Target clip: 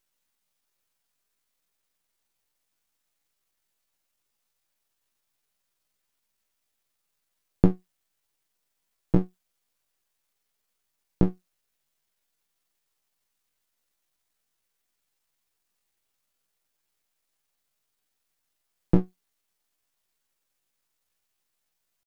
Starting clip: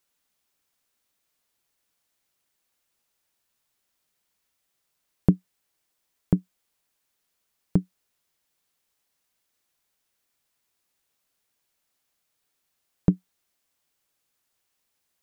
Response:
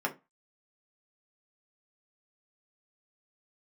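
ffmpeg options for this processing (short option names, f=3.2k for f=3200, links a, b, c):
-af "atempo=0.69,aeval=exprs='max(val(0),0)':c=same,volume=2dB"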